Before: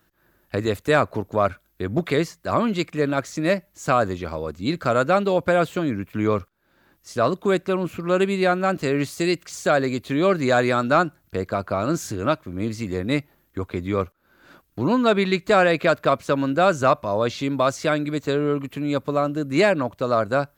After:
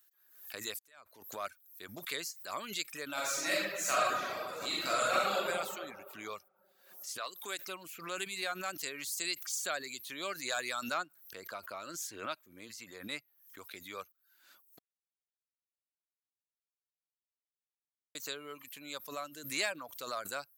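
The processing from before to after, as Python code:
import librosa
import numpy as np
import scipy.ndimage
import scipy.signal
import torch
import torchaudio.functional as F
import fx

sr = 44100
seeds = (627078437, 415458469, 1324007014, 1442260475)

y = fx.reverb_throw(x, sr, start_s=3.12, length_s=2.36, rt60_s=2.0, drr_db=-8.0)
y = fx.highpass(y, sr, hz=fx.line((7.17, 1000.0), (7.67, 300.0)), slope=6, at=(7.17, 7.67), fade=0.02)
y = fx.high_shelf(y, sr, hz=4200.0, db=-7.5, at=(10.94, 13.58))
y = fx.edit(y, sr, fx.fade_in_span(start_s=0.79, length_s=0.68, curve='qua'),
    fx.silence(start_s=14.79, length_s=3.36), tone=tone)
y = fx.dereverb_blind(y, sr, rt60_s=0.53)
y = np.diff(y, prepend=0.0)
y = fx.pre_swell(y, sr, db_per_s=90.0)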